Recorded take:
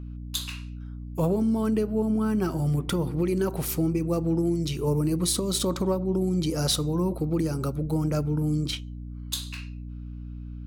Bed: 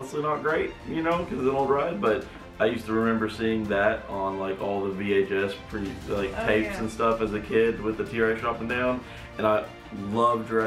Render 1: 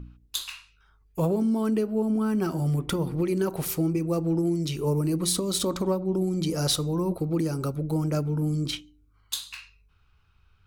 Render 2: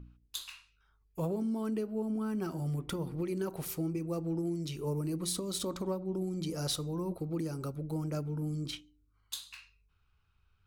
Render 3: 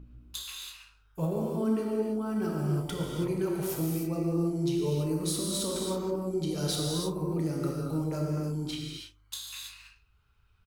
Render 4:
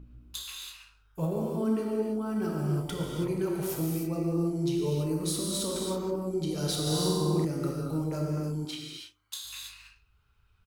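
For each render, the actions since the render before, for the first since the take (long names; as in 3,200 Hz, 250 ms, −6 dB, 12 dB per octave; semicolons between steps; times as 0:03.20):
hum removal 60 Hz, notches 5
level −9 dB
double-tracking delay 32 ms −11.5 dB; reverb whose tail is shaped and stops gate 350 ms flat, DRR −2.5 dB
0:06.82–0:07.45: flutter between parallel walls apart 7.8 metres, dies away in 1.3 s; 0:08.65–0:09.45: high-pass filter 360 Hz 6 dB per octave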